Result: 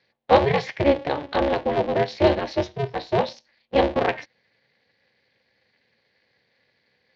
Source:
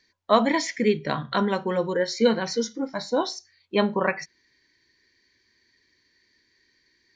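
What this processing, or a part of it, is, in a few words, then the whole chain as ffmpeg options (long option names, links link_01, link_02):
ring modulator pedal into a guitar cabinet: -af "aeval=exprs='val(0)*sgn(sin(2*PI*140*n/s))':channel_layout=same,highpass=85,equalizer=frequency=120:width_type=q:width=4:gain=7,equalizer=frequency=530:width_type=q:width=4:gain=8,equalizer=frequency=760:width_type=q:width=4:gain=4,equalizer=frequency=1300:width_type=q:width=4:gain=-8,lowpass=frequency=4000:width=0.5412,lowpass=frequency=4000:width=1.3066"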